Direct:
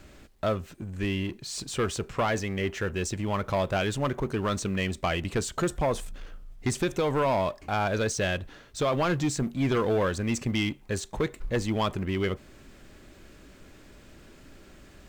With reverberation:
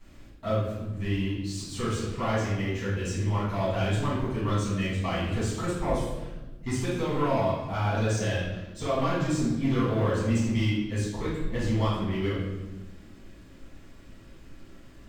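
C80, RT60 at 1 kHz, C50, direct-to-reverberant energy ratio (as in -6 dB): 4.0 dB, 0.95 s, 0.0 dB, -12.0 dB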